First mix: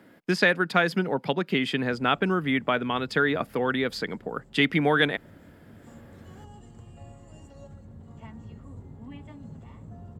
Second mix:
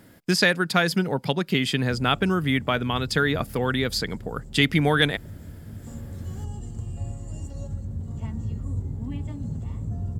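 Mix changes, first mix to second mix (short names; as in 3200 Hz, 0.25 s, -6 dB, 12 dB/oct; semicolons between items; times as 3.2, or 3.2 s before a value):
background: add bell 280 Hz +7 dB 2.2 oct; master: remove three-band isolator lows -17 dB, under 170 Hz, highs -13 dB, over 3300 Hz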